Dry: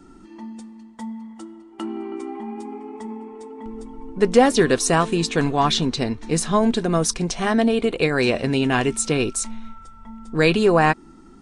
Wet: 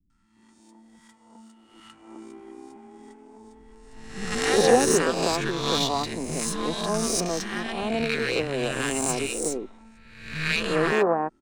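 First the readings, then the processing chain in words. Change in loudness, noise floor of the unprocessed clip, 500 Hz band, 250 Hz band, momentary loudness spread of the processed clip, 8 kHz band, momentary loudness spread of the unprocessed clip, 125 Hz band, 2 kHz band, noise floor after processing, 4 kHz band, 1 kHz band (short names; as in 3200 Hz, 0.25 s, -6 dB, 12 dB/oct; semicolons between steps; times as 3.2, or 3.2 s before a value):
-4.5 dB, -46 dBFS, -4.5 dB, -8.0 dB, 19 LU, -1.5 dB, 20 LU, -9.0 dB, -3.0 dB, -59 dBFS, -2.0 dB, -5.5 dB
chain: spectral swells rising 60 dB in 1.18 s; power-law curve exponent 1.4; three bands offset in time lows, highs, mids 0.1/0.36 s, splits 190/1100 Hz; gain -3 dB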